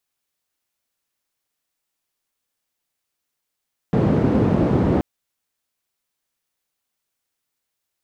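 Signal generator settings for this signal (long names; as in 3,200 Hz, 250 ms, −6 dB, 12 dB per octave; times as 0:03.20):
band-limited noise 100–280 Hz, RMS −17.5 dBFS 1.08 s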